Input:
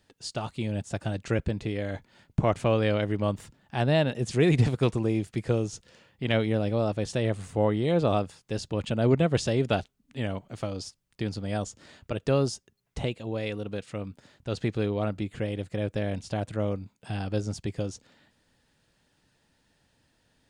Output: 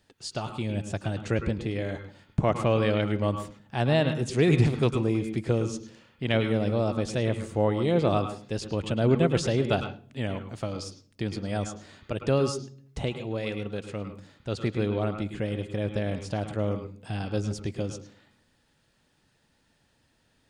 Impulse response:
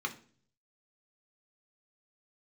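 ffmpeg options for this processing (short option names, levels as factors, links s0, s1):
-filter_complex "[0:a]asplit=2[s0][s1];[1:a]atrim=start_sample=2205,lowpass=5100,adelay=105[s2];[s1][s2]afir=irnorm=-1:irlink=0,volume=0.299[s3];[s0][s3]amix=inputs=2:normalize=0"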